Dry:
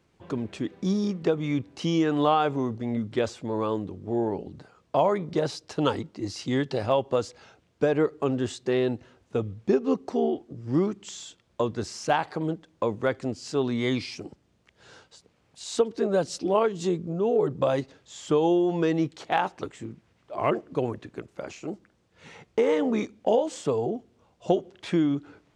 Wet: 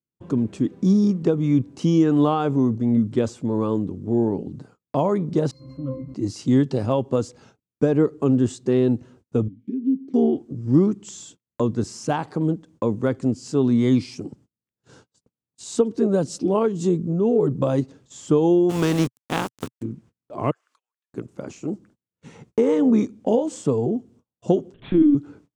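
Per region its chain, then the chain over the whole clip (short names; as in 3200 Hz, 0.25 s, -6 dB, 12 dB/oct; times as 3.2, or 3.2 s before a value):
5.51–6.14 zero-crossing step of -28.5 dBFS + octave resonator C, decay 0.29 s
9.48–10.14 low shelf 270 Hz +6.5 dB + compressor, threshold -23 dBFS + vowel filter i
18.69–19.81 spectral contrast lowered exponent 0.46 + LPF 4100 Hz + sample gate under -33 dBFS
20.51–21.13 HPF 1300 Hz 24 dB/oct + compressor, threshold -54 dBFS
24.74–25.15 HPF 57 Hz + flutter echo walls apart 11.5 m, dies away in 0.47 s + LPC vocoder at 8 kHz pitch kept
whole clip: graphic EQ 125/250/500/1000/2000/4000/8000 Hz +8/+9/+6/+3/-5/-4/+5 dB; gate -47 dBFS, range -34 dB; bell 620 Hz -7.5 dB 1.4 oct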